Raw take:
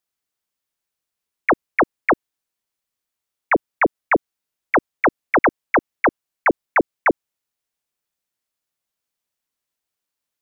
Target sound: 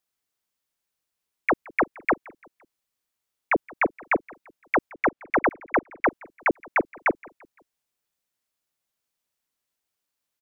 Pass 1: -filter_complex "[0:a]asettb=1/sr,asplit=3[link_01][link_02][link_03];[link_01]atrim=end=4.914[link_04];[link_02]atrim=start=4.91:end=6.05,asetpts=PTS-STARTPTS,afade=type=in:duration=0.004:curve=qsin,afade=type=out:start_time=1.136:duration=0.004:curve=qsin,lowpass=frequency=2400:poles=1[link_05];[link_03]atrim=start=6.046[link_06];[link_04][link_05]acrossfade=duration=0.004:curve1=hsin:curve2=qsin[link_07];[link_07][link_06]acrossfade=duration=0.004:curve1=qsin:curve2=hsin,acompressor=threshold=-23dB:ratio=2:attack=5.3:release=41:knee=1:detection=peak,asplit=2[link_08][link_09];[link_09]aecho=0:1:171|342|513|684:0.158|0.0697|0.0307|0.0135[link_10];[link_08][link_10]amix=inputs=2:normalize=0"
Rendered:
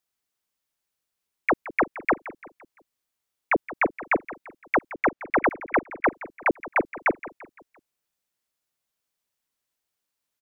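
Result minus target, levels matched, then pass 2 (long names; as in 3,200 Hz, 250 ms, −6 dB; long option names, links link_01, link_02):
echo-to-direct +7.5 dB
-filter_complex "[0:a]asettb=1/sr,asplit=3[link_01][link_02][link_03];[link_01]atrim=end=4.914[link_04];[link_02]atrim=start=4.91:end=6.05,asetpts=PTS-STARTPTS,afade=type=in:duration=0.004:curve=qsin,afade=type=out:start_time=1.136:duration=0.004:curve=qsin,lowpass=frequency=2400:poles=1[link_05];[link_03]atrim=start=6.046[link_06];[link_04][link_05]acrossfade=duration=0.004:curve1=hsin:curve2=qsin[link_07];[link_07][link_06]acrossfade=duration=0.004:curve1=qsin:curve2=hsin,acompressor=threshold=-23dB:ratio=2:attack=5.3:release=41:knee=1:detection=peak,asplit=2[link_08][link_09];[link_09]aecho=0:1:171|342|513:0.0668|0.0294|0.0129[link_10];[link_08][link_10]amix=inputs=2:normalize=0"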